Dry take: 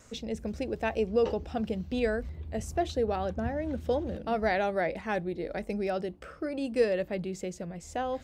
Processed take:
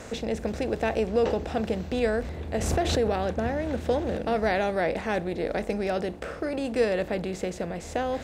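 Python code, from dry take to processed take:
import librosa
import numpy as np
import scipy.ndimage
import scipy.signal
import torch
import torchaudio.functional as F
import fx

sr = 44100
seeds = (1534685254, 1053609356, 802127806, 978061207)

y = fx.bin_compress(x, sr, power=0.6)
y = fx.pre_swell(y, sr, db_per_s=35.0, at=(2.54, 3.25))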